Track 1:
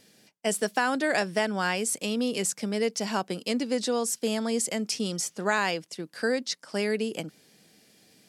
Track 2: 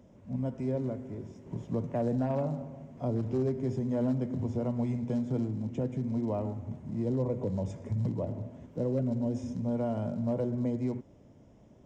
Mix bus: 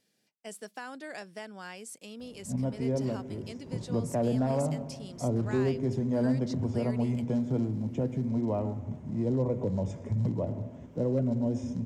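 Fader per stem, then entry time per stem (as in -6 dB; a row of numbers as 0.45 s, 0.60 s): -16.0 dB, +2.0 dB; 0.00 s, 2.20 s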